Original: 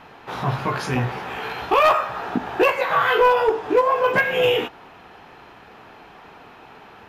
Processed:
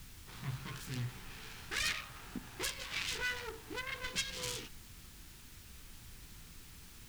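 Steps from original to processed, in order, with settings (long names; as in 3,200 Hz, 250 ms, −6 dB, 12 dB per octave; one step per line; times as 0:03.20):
phase distortion by the signal itself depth 0.37 ms
background noise pink −38 dBFS
guitar amp tone stack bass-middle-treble 6-0-2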